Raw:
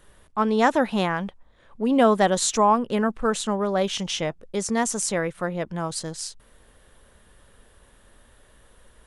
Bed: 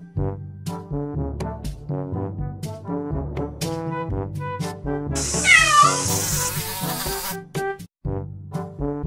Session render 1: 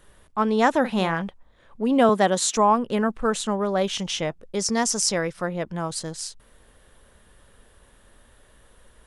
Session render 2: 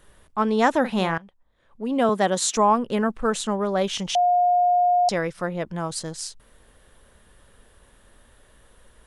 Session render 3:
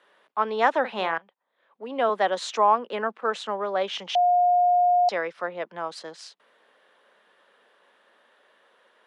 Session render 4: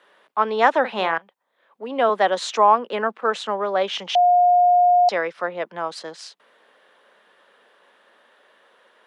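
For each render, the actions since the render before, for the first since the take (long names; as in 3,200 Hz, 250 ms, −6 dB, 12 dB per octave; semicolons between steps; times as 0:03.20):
0:00.80–0:01.22: double-tracking delay 42 ms −10.5 dB; 0:02.09–0:02.57: high-pass filter 150 Hz 24 dB per octave; 0:04.59–0:05.42: parametric band 5,200 Hz +12 dB 0.46 octaves
0:01.18–0:02.48: fade in, from −20.5 dB; 0:04.15–0:05.09: beep over 713 Hz −15.5 dBFS
Butterworth high-pass 170 Hz; three-way crossover with the lows and the highs turned down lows −19 dB, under 410 Hz, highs −23 dB, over 4,300 Hz
level +4.5 dB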